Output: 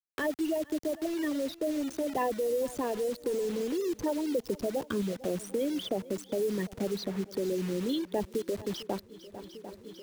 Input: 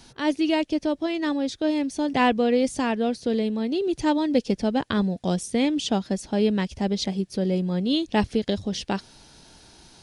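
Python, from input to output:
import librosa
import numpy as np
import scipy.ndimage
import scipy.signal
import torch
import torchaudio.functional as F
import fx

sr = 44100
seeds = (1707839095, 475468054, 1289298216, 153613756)

y = fx.envelope_sharpen(x, sr, power=3.0)
y = fx.quant_dither(y, sr, seeds[0], bits=6, dither='none')
y = fx.echo_swing(y, sr, ms=749, ratio=1.5, feedback_pct=34, wet_db=-21.0)
y = fx.band_squash(y, sr, depth_pct=70)
y = F.gain(torch.from_numpy(y), -8.0).numpy()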